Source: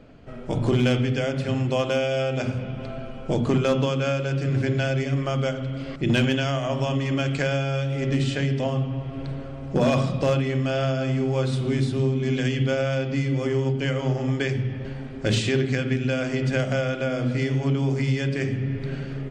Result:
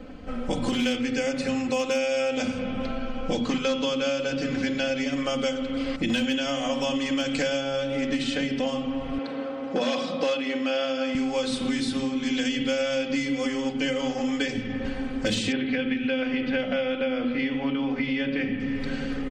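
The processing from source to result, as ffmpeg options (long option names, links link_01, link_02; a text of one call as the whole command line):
ffmpeg -i in.wav -filter_complex "[0:a]asettb=1/sr,asplit=3[link_01][link_02][link_03];[link_01]atrim=end=0.984[link_04];[link_02]atrim=start=0.98:end=2.3,asetpts=PTS-STARTPTS,afade=type=in:duration=0.004:curve=qsin,afade=type=out:start_time=1.316:duration=0.004:curve=qsin,bandreject=frequency=3200:width=5.1[link_05];[link_03]atrim=start=2.296[link_06];[link_04][link_05]acrossfade=duration=0.004:curve1=hsin:curve2=qsin[link_07];[link_07][link_06]acrossfade=duration=0.004:curve1=qsin:curve2=hsin,asettb=1/sr,asplit=3[link_08][link_09][link_10];[link_08]atrim=end=2.844[link_11];[link_09]atrim=start=2.84:end=5.12,asetpts=PTS-STARTPTS,afade=type=in:duration=0.004:curve=qsin,afade=type=out:start_time=2.276:duration=0.004:curve=qsin,lowpass=frequency=6900:width=0.5412,lowpass=frequency=6900:width=1.3066[link_12];[link_10]atrim=start=5.116[link_13];[link_11][link_12]acrossfade=duration=0.004:curve1=hsin:curve2=qsin[link_14];[link_14][link_13]acrossfade=duration=0.004:curve1=qsin:curve2=hsin,asettb=1/sr,asplit=3[link_15][link_16][link_17];[link_15]atrim=end=7.604[link_18];[link_16]atrim=start=7.6:end=8.67,asetpts=PTS-STARTPTS,afade=type=in:duration=0.004:curve=qsin,afade=type=out:start_time=1.066:duration=0.004:curve=qsin,highshelf=frequency=4700:gain=-8[link_19];[link_17]atrim=start=8.666[link_20];[link_18][link_19]acrossfade=duration=0.004:curve1=hsin:curve2=qsin[link_21];[link_21][link_20]acrossfade=duration=0.004:curve1=qsin:curve2=hsin,asettb=1/sr,asplit=3[link_22][link_23][link_24];[link_22]atrim=end=9.184[link_25];[link_23]atrim=start=9.18:end=11.15,asetpts=PTS-STARTPTS,afade=type=in:duration=0.004:curve=qsin,afade=type=out:start_time=1.966:duration=0.004:curve=qsin,highpass=300,lowpass=4600[link_26];[link_24]atrim=start=11.146[link_27];[link_25][link_26]acrossfade=duration=0.004:curve1=hsin:curve2=qsin[link_28];[link_28][link_27]acrossfade=duration=0.004:curve1=qsin:curve2=hsin,asettb=1/sr,asplit=3[link_29][link_30][link_31];[link_29]atrim=end=15.524[link_32];[link_30]atrim=start=15.52:end=18.6,asetpts=PTS-STARTPTS,afade=type=in:duration=0.004:curve=qsin,afade=type=out:start_time=3.076:duration=0.004:curve=qsin,lowpass=frequency=3200:width=0.5412,lowpass=frequency=3200:width=1.3066[link_33];[link_31]atrim=start=18.596[link_34];[link_32][link_33]acrossfade=duration=0.004:curve1=hsin:curve2=qsin[link_35];[link_35][link_34]acrossfade=duration=0.004:curve1=qsin:curve2=hsin,aecho=1:1:3.9:1,acrossover=split=940|2300[link_36][link_37][link_38];[link_36]acompressor=threshold=-30dB:ratio=4[link_39];[link_37]acompressor=threshold=-45dB:ratio=4[link_40];[link_38]acompressor=threshold=-34dB:ratio=4[link_41];[link_39][link_40][link_41]amix=inputs=3:normalize=0,volume=4dB" out.wav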